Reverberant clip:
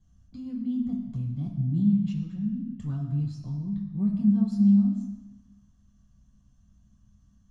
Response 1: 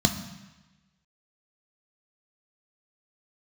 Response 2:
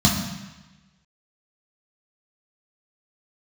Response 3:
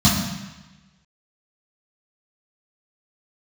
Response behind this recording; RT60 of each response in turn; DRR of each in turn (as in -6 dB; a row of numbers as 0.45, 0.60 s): 2; 1.1, 1.1, 1.1 s; 5.5, -3.5, -9.0 dB